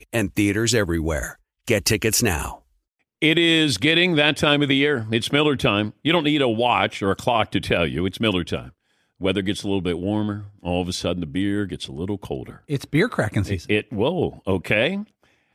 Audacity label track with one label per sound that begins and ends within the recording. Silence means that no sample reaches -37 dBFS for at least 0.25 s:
1.680000	2.550000	sound
3.220000	8.690000	sound
9.210000	15.040000	sound